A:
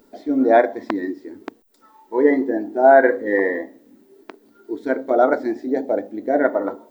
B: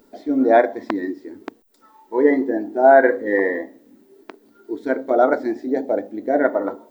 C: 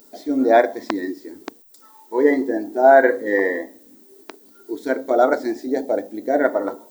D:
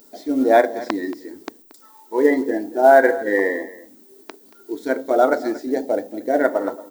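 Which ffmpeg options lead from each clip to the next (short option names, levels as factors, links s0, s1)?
-af anull
-af "bass=f=250:g=-3,treble=f=4000:g=14"
-af "acrusher=bits=8:mode=log:mix=0:aa=0.000001,aecho=1:1:229:0.133"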